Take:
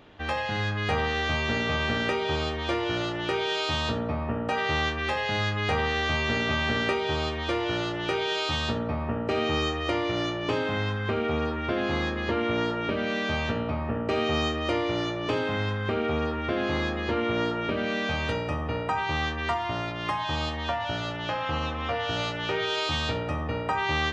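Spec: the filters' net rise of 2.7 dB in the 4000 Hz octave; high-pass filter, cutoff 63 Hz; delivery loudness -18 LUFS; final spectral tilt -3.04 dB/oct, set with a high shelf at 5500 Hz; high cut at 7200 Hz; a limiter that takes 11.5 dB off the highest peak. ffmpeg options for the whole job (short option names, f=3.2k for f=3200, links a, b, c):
-af "highpass=63,lowpass=7.2k,equalizer=f=4k:t=o:g=5,highshelf=f=5.5k:g=-3.5,volume=14.5dB,alimiter=limit=-9.5dB:level=0:latency=1"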